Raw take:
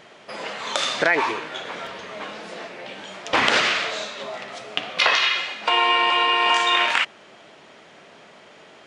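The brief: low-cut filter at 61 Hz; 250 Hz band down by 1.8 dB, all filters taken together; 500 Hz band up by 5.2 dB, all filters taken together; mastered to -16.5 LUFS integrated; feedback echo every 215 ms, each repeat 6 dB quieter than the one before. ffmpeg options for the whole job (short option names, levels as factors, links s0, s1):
-af "highpass=61,equalizer=f=250:t=o:g=-8,equalizer=f=500:t=o:g=8.5,aecho=1:1:215|430|645|860|1075|1290:0.501|0.251|0.125|0.0626|0.0313|0.0157,volume=1.26"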